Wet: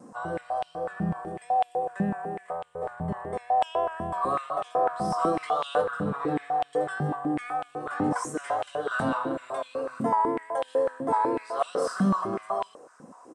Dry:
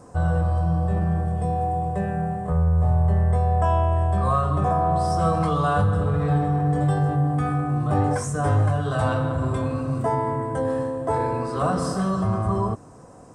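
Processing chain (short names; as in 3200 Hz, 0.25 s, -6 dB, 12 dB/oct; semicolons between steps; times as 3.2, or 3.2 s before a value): vibrato 4 Hz 50 cents; downsampling 32000 Hz; stepped high-pass 8 Hz 220–3100 Hz; gain -5.5 dB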